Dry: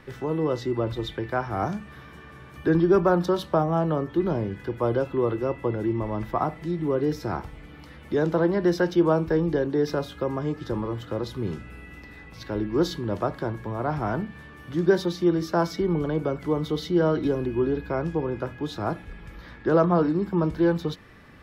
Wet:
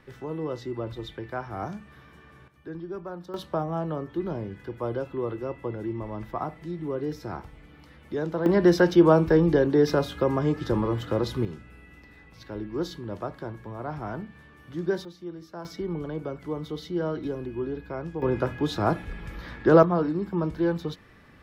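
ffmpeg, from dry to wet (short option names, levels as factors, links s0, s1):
-af "asetnsamples=n=441:p=0,asendcmd='2.48 volume volume -17dB;3.34 volume volume -6dB;8.46 volume volume 3.5dB;11.45 volume volume -7dB;15.05 volume volume -16.5dB;15.65 volume volume -7dB;18.22 volume volume 4dB;19.83 volume volume -3.5dB',volume=0.473"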